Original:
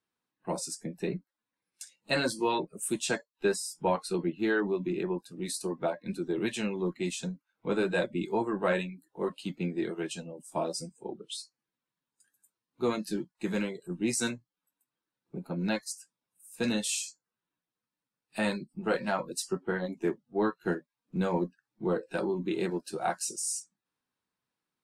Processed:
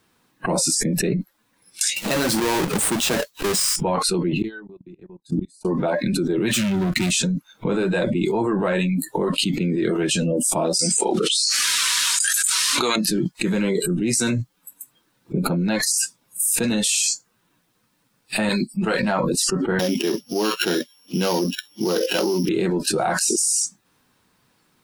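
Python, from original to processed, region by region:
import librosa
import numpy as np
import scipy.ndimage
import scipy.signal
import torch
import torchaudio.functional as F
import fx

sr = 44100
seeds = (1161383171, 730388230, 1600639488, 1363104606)

y = fx.chain(x, sr, fx.halfwave_hold(),
    fx.low_shelf(hz=260.0, db=-4.5),
    fx.band_squash(depth_pct=40), at=(1.96, 3.76))
y = fx.chain(y, sr, fx.low_shelf(hz=210.0, db=10.5),
    fx.gate_flip(shuts_db=-30.0, range_db=-37),
    fx.level_steps(step_db=22), at=(4.42, 5.65))
y = fx.chain(y, sr, fx.tone_stack(knobs='6-0-2'),
    fx.leveller(passes=5),
    fx.highpass(hz=71.0, slope=6), at=(6.51, 7.11))
y = fx.chain(y, sr, fx.weighting(curve='ITU-R 468'),
    fx.env_flatten(amount_pct=70), at=(10.79, 12.96))
y = fx.chain(y, sr, fx.tilt_shelf(db=-5.0, hz=1300.0),
    fx.upward_expand(threshold_db=-43.0, expansion=1.5), at=(18.49, 19.03))
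y = fx.chain(y, sr, fx.sample_sort(block=8),
    fx.highpass(hz=260.0, slope=12),
    fx.peak_eq(hz=2900.0, db=13.5, octaves=0.53), at=(19.79, 22.49))
y = fx.noise_reduce_blind(y, sr, reduce_db=15)
y = fx.low_shelf(y, sr, hz=210.0, db=5.5)
y = fx.env_flatten(y, sr, amount_pct=100)
y = y * librosa.db_to_amplitude(-1.5)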